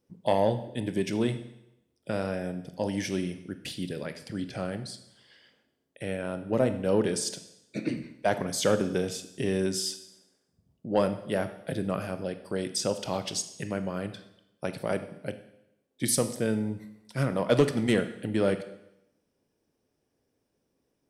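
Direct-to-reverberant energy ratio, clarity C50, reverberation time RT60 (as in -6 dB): 9.5 dB, 12.0 dB, 0.85 s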